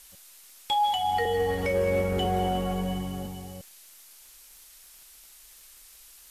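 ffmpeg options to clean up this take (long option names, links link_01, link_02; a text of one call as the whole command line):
ffmpeg -i in.wav -af "adeclick=threshold=4,afftdn=noise_reduction=22:noise_floor=-52" out.wav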